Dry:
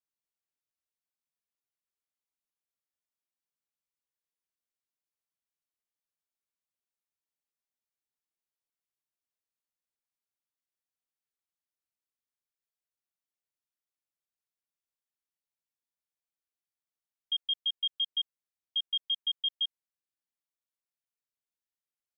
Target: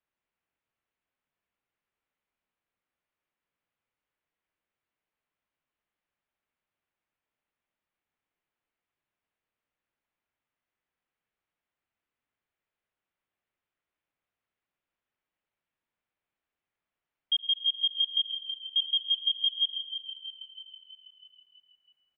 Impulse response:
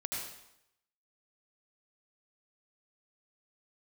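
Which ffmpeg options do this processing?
-filter_complex "[0:a]lowpass=f=2.9k:w=0.5412,lowpass=f=2.9k:w=1.3066,asplit=8[a][b][c][d][e][f][g][h];[b]adelay=324,afreqshift=-37,volume=-11dB[i];[c]adelay=648,afreqshift=-74,volume=-15.6dB[j];[d]adelay=972,afreqshift=-111,volume=-20.2dB[k];[e]adelay=1296,afreqshift=-148,volume=-24.7dB[l];[f]adelay=1620,afreqshift=-185,volume=-29.3dB[m];[g]adelay=1944,afreqshift=-222,volume=-33.9dB[n];[h]adelay=2268,afreqshift=-259,volume=-38.5dB[o];[a][i][j][k][l][m][n][o]amix=inputs=8:normalize=0,asplit=2[p][q];[1:a]atrim=start_sample=2205[r];[q][r]afir=irnorm=-1:irlink=0,volume=-6dB[s];[p][s]amix=inputs=2:normalize=0,volume=7dB"

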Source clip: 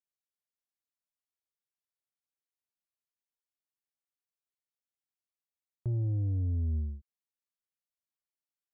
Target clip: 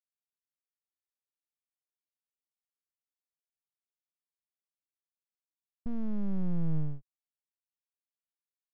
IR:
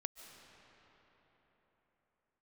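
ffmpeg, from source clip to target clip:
-af "agate=range=-33dB:threshold=-37dB:ratio=3:detection=peak,asubboost=boost=8.5:cutoff=86,aeval=exprs='abs(val(0))':c=same,volume=-7.5dB"

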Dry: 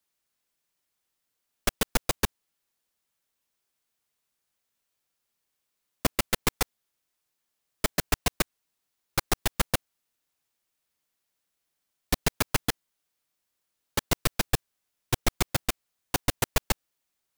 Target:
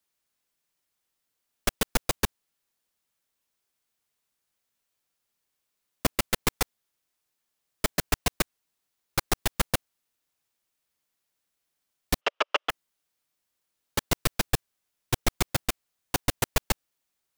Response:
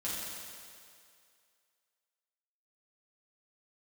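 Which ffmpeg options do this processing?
-filter_complex "[0:a]asplit=3[a][b][c];[a]afade=t=out:st=12.2:d=0.02[d];[b]highpass=f=390:w=0.5412,highpass=f=390:w=1.3066,equalizer=f=580:t=q:w=4:g=8,equalizer=f=1.2k:t=q:w=4:g=9,equalizer=f=2.9k:t=q:w=4:g=9,equalizer=f=4.3k:t=q:w=4:g=-8,lowpass=f=4.6k:w=0.5412,lowpass=f=4.6k:w=1.3066,afade=t=in:st=12.2:d=0.02,afade=t=out:st=12.69:d=0.02[e];[c]afade=t=in:st=12.69:d=0.02[f];[d][e][f]amix=inputs=3:normalize=0"

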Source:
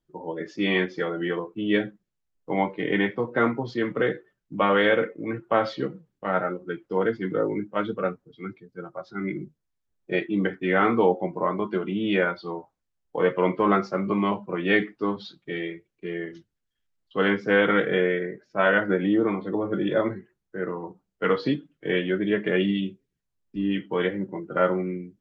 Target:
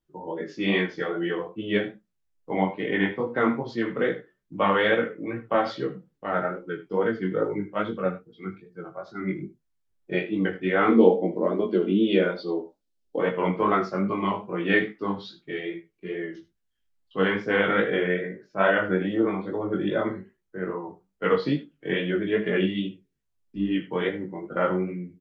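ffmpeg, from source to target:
-filter_complex "[0:a]asettb=1/sr,asplit=3[a][b][c];[a]atrim=end=10.884[d];[b]atrim=start=10.88:end=13.19,asetpts=PTS-STARTPTS,afade=t=in:d=0.004:c=qsin,afade=t=out:st=2.306:d=0.004:c=qsin,equalizer=f=125:t=o:w=1:g=-10,equalizer=f=250:t=o:w=1:g=9,equalizer=f=500:t=o:w=1:g=6,equalizer=f=1k:t=o:w=1:g=-9,equalizer=f=2k:t=o:w=1:g=-4,equalizer=f=4k:t=o:w=1:g=6[e];[c]atrim=start=13.186[f];[d][e]acrossfade=d=0.004:c1=hsin:c2=qsin[g];[g][f]acrossfade=d=0.004:c1=qsin:c2=hsin,aecho=1:1:21|78:0.335|0.2,flanger=delay=17:depth=5.2:speed=2.4,volume=1.5dB"

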